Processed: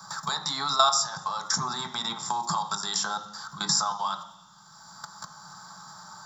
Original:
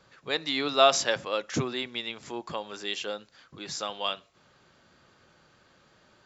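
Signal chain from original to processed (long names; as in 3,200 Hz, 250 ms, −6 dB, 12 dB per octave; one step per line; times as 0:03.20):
output level in coarse steps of 20 dB
drawn EQ curve 110 Hz 0 dB, 170 Hz +9 dB, 240 Hz −12 dB, 480 Hz −15 dB, 860 Hz +13 dB, 1,300 Hz +9 dB, 2,600 Hz −24 dB, 3,700 Hz +1 dB, 5,900 Hz +14 dB
convolution reverb RT60 0.60 s, pre-delay 3 ms, DRR 4.5 dB
multiband upward and downward compressor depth 70%
level +6 dB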